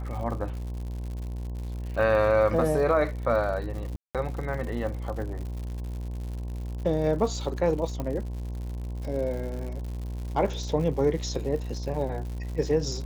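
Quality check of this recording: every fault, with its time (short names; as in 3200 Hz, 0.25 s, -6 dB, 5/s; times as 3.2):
buzz 60 Hz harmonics 18 -33 dBFS
crackle 130/s -36 dBFS
3.96–4.15 gap 0.187 s
8 pop -19 dBFS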